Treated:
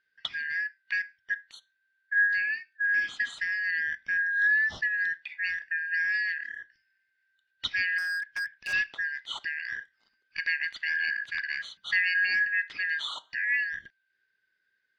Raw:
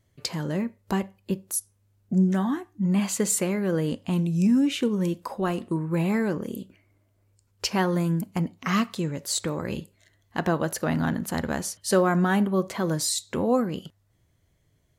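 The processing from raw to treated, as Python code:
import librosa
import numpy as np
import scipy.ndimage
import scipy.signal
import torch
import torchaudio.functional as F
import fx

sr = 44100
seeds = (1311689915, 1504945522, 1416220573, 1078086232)

y = fx.band_shuffle(x, sr, order='3142')
y = fx.dynamic_eq(y, sr, hz=1600.0, q=3.8, threshold_db=-35.0, ratio=4.0, max_db=6)
y = fx.ladder_lowpass(y, sr, hz=4100.0, resonance_pct=60)
y = fx.clip_hard(y, sr, threshold_db=-29.0, at=(7.98, 8.73))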